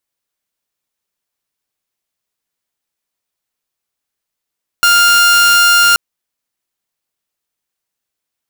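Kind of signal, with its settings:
tone saw 1,400 Hz −4 dBFS 1.13 s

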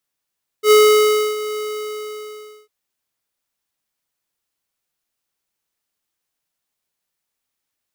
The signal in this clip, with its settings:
note with an ADSR envelope square 425 Hz, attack 81 ms, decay 645 ms, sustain −15.5 dB, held 0.94 s, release 1,110 ms −9 dBFS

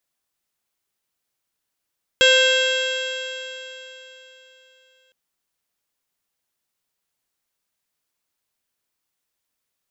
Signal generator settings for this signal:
stiff-string partials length 2.91 s, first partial 515 Hz, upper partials −20/−1.5/−12/−3/1/−11/−17.5/−15/−18/−19.5/−11.5 dB, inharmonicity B 0.0032, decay 3.58 s, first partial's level −15.5 dB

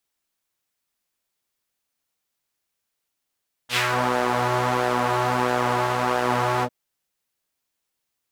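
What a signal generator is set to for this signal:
subtractive patch with pulse-width modulation B2, noise −4 dB, filter bandpass, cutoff 420 Hz, Q 1.4, filter envelope 3 octaves, filter decay 0.28 s, filter sustain 40%, attack 71 ms, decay 0.12 s, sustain −3.5 dB, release 0.06 s, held 2.94 s, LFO 1.5 Hz, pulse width 30%, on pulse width 19%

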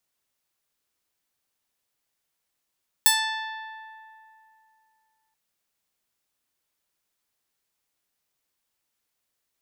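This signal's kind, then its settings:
Karplus-Strong string A5, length 2.28 s, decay 2.79 s, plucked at 0.38, bright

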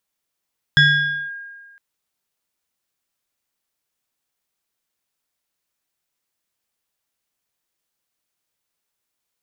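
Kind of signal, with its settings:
two-operator FM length 1.01 s, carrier 1,620 Hz, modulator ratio 1.09, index 1, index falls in 0.54 s linear, decay 1.55 s, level −7.5 dB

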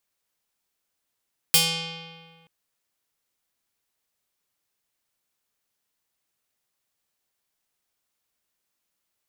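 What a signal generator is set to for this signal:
Karplus-Strong string E3, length 0.93 s, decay 1.84 s, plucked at 0.5, medium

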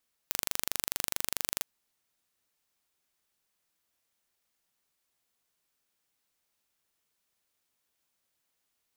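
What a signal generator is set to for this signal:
impulse train 24.6 per second, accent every 0, −2.5 dBFS 1.32 s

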